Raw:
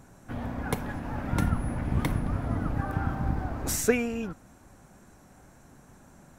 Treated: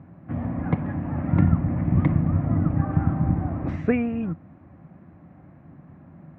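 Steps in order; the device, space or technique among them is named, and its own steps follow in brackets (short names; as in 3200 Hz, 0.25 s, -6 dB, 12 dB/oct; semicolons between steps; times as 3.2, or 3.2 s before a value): bass cabinet (speaker cabinet 83–2000 Hz, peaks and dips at 90 Hz +8 dB, 160 Hz +10 dB, 310 Hz +5 dB, 430 Hz -8 dB, 890 Hz -6 dB, 1500 Hz -10 dB); gain +4.5 dB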